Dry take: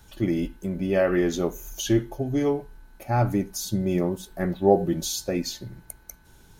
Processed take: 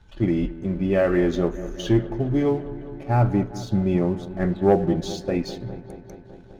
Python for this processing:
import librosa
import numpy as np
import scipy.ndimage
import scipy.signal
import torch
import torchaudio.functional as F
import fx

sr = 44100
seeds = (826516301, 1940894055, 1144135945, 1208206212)

y = scipy.signal.sosfilt(scipy.signal.butter(2, 3500.0, 'lowpass', fs=sr, output='sos'), x)
y = fx.low_shelf(y, sr, hz=170.0, db=5.5)
y = fx.leveller(y, sr, passes=1)
y = fx.echo_wet_lowpass(y, sr, ms=203, feedback_pct=75, hz=1900.0, wet_db=-15.0)
y = y * 10.0 ** (-2.5 / 20.0)